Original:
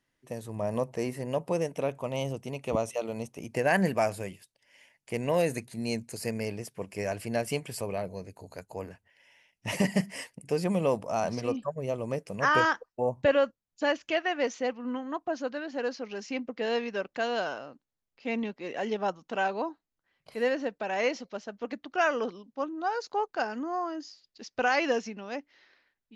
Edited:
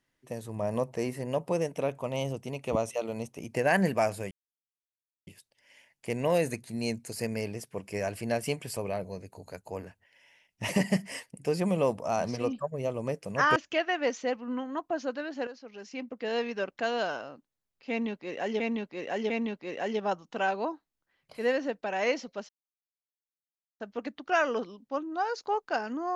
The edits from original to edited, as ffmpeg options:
-filter_complex "[0:a]asplit=7[s0][s1][s2][s3][s4][s5][s6];[s0]atrim=end=4.31,asetpts=PTS-STARTPTS,afade=t=out:st=4.306:d=0.004:c=hsin,apad=pad_dur=0.96[s7];[s1]atrim=start=4.31:end=12.602,asetpts=PTS-STARTPTS,afade=t=in:d=0.004:c=hsin[s8];[s2]atrim=start=13.928:end=15.84,asetpts=PTS-STARTPTS,afade=t=out:st=1.908:d=0.004:c=hsin:silence=0.211349[s9];[s3]atrim=start=15.84:end=18.972,asetpts=PTS-STARTPTS,afade=t=in:d=1.08:silence=0.211349[s10];[s4]atrim=start=18.268:end=18.972[s11];[s5]atrim=start=18.268:end=21.46,asetpts=PTS-STARTPTS,afade=t=out:st=3.188:d=0.004:c=hsin,apad=pad_dur=1.31[s12];[s6]atrim=start=21.46,asetpts=PTS-STARTPTS,afade=t=in:d=0.004:c=hsin[s13];[s7][s8]concat=n=2:v=0:a=1[s14];[s9][s10]concat=n=2:v=0:a=1[s15];[s14][s15]acrossfade=d=0.004:c1=hsin:c2=hsin[s16];[s16][s11]acrossfade=d=0.004:c1=hsin:c2=hsin[s17];[s12][s13]concat=n=2:v=0:a=1[s18];[s17][s18]acrossfade=d=0.004:c1=hsin:c2=hsin"

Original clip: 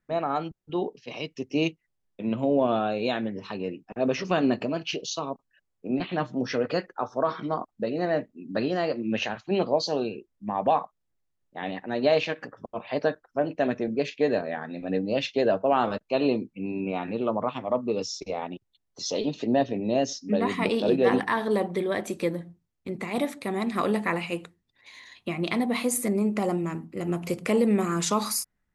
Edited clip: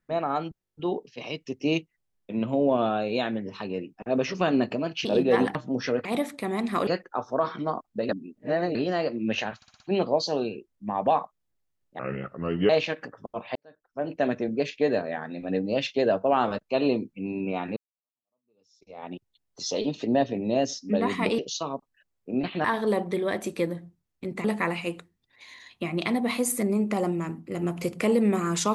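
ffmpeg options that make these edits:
-filter_complex "[0:a]asplit=23[s0][s1][s2][s3][s4][s5][s6][s7][s8][s9][s10][s11][s12][s13][s14][s15][s16][s17][s18][s19][s20][s21][s22];[s0]atrim=end=0.652[s23];[s1]atrim=start=0.628:end=0.652[s24];[s2]atrim=start=0.628:end=0.652[s25];[s3]atrim=start=0.628:end=0.652[s26];[s4]atrim=start=0.628:end=0.652[s27];[s5]atrim=start=0.628:end=4.952[s28];[s6]atrim=start=20.778:end=21.282[s29];[s7]atrim=start=6.208:end=6.712[s30];[s8]atrim=start=23.078:end=23.902[s31];[s9]atrim=start=6.708:end=7.932[s32];[s10]atrim=start=7.928:end=8.592,asetpts=PTS-STARTPTS,areverse[s33];[s11]atrim=start=8.588:end=9.462[s34];[s12]atrim=start=9.398:end=9.462[s35];[s13]atrim=start=9.398:end=9.462[s36];[s14]atrim=start=9.398:end=9.462[s37];[s15]atrim=start=9.398:end=11.594[s38];[s16]atrim=start=11.59:end=12.09,asetpts=PTS-STARTPTS,asetrate=31311,aresample=44100,atrim=end_sample=31056,asetpts=PTS-STARTPTS[s39];[s17]atrim=start=12.086:end=12.95,asetpts=PTS-STARTPTS,afade=t=out:st=0.86:d=0.004:c=hsin[s40];[s18]atrim=start=12.95:end=17.16,asetpts=PTS-STARTPTS,afade=t=in:d=0.6:c=qua,afade=t=out:st=4.206:d=0.004:c=hsin[s41];[s19]atrim=start=17.16:end=20.782,asetpts=PTS-STARTPTS,afade=t=in:d=1.35:c=exp[s42];[s20]atrim=start=4.948:end=6.212[s43];[s21]atrim=start=21.278:end=23.082[s44];[s22]atrim=start=23.898[s45];[s23][s24]acrossfade=d=0.004:c1=hsin:c2=hsin[s46];[s46][s25]acrossfade=d=0.004:c1=hsin:c2=hsin[s47];[s47][s26]acrossfade=d=0.004:c1=hsin:c2=hsin[s48];[s48][s27]acrossfade=d=0.004:c1=hsin:c2=hsin[s49];[s49][s28]acrossfade=d=0.004:c1=hsin:c2=hsin[s50];[s50][s29]acrossfade=d=0.004:c1=hsin:c2=hsin[s51];[s51][s30]acrossfade=d=0.004:c1=hsin:c2=hsin[s52];[s52][s31]acrossfade=d=0.004:c1=hsin:c2=hsin[s53];[s53][s32]acrossfade=d=0.004:c1=hsin:c2=hsin[s54];[s54][s33]acrossfade=d=0.004:c1=hsin:c2=hsin[s55];[s55][s34]acrossfade=d=0.004:c1=hsin:c2=hsin[s56];[s56][s35]acrossfade=d=0.004:c1=hsin:c2=hsin[s57];[s57][s36]acrossfade=d=0.004:c1=hsin:c2=hsin[s58];[s58][s37]acrossfade=d=0.004:c1=hsin:c2=hsin[s59];[s59][s38]acrossfade=d=0.004:c1=hsin:c2=hsin[s60];[s60][s39]acrossfade=d=0.004:c1=hsin:c2=hsin[s61];[s40][s41][s42]concat=n=3:v=0:a=1[s62];[s61][s62]acrossfade=d=0.004:c1=hsin:c2=hsin[s63];[s63][s43]acrossfade=d=0.004:c1=hsin:c2=hsin[s64];[s64][s44]acrossfade=d=0.004:c1=hsin:c2=hsin[s65];[s65][s45]acrossfade=d=0.004:c1=hsin:c2=hsin"

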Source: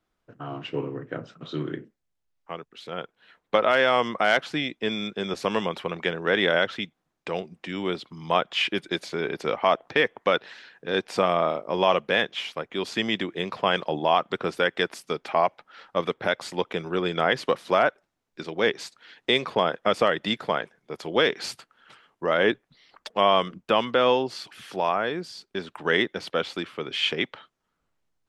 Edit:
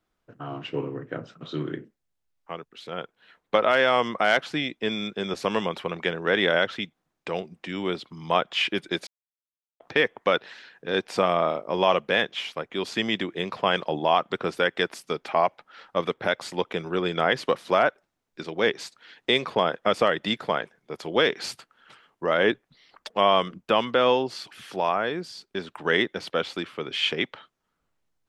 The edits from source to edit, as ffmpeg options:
-filter_complex "[0:a]asplit=3[s0][s1][s2];[s0]atrim=end=9.07,asetpts=PTS-STARTPTS,afade=t=out:st=9.066:d=0.004:c=hsin[s3];[s1]atrim=start=9.07:end=9.8,asetpts=PTS-STARTPTS,volume=0[s4];[s2]atrim=start=9.8,asetpts=PTS-STARTPTS,afade=t=in:d=0.004:c=hsin[s5];[s3][s4][s5]concat=n=3:v=0:a=1"

